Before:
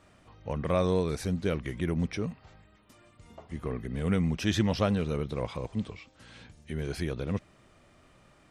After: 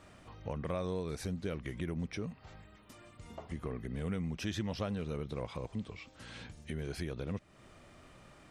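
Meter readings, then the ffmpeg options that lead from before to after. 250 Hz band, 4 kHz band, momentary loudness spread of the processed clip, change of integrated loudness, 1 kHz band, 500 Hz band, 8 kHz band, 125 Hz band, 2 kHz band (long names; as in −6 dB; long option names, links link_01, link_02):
−8.5 dB, −7.5 dB, 19 LU, −8.5 dB, −8.5 dB, −8.5 dB, −6.5 dB, −8.0 dB, −7.0 dB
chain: -af "acompressor=threshold=-42dB:ratio=2.5,volume=2.5dB"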